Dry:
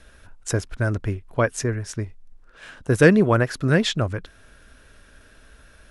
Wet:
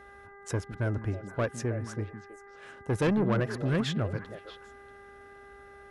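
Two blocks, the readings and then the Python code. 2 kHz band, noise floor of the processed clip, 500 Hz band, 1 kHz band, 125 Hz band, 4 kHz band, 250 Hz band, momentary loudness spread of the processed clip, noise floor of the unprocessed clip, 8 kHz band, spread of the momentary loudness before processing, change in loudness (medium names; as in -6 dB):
-12.5 dB, -51 dBFS, -10.0 dB, -8.5 dB, -7.5 dB, -10.5 dB, -8.5 dB, 23 LU, -52 dBFS, -12.5 dB, 18 LU, -9.5 dB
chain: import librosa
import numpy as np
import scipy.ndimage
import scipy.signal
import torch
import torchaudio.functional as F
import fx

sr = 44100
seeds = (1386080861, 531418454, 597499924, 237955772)

p1 = scipy.signal.sosfilt(scipy.signal.butter(2, 59.0, 'highpass', fs=sr, output='sos'), x)
p2 = fx.high_shelf(p1, sr, hz=2300.0, db=-8.0)
p3 = 10.0 ** (-17.0 / 20.0) * np.tanh(p2 / 10.0 ** (-17.0 / 20.0))
p4 = fx.dmg_buzz(p3, sr, base_hz=400.0, harmonics=5, level_db=-47.0, tilt_db=-1, odd_only=False)
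p5 = p4 + fx.echo_stepped(p4, sr, ms=159, hz=190.0, octaves=1.4, feedback_pct=70, wet_db=-5, dry=0)
y = p5 * librosa.db_to_amplitude(-5.0)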